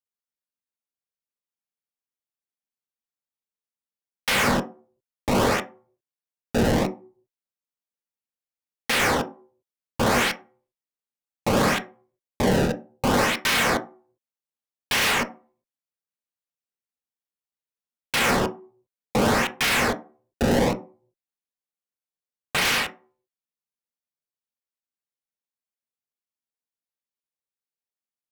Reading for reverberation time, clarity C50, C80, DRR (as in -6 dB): not exponential, 15.5 dB, 21.0 dB, 5.0 dB